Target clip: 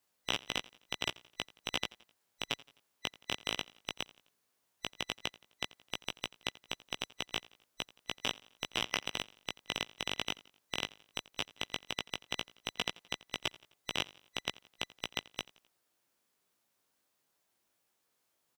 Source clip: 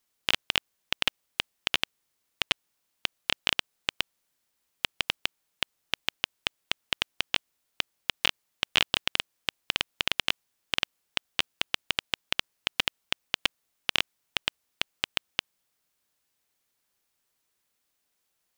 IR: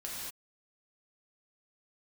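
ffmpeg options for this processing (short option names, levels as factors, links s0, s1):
-filter_complex "[0:a]afftfilt=real='real(if(between(b,1,1012),(2*floor((b-1)/92)+1)*92-b,b),0)':imag='imag(if(between(b,1,1012),(2*floor((b-1)/92)+1)*92-b,b),0)*if(between(b,1,1012),-1,1)':win_size=2048:overlap=0.75,highpass=f=140:p=1,alimiter=limit=0.251:level=0:latency=1:release=13,flanger=delay=16.5:depth=2.2:speed=0.14,acrossover=split=1300[s0][s1];[s0]acontrast=34[s2];[s2][s1]amix=inputs=2:normalize=0,aecho=1:1:86|172|258:0.0841|0.0395|0.0186,volume=1.12"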